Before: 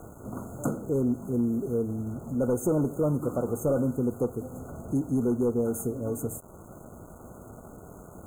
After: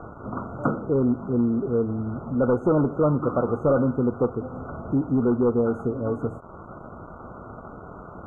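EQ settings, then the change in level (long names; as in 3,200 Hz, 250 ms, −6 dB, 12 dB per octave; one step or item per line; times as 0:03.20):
low-pass with resonance 1,300 Hz, resonance Q 3
+4.0 dB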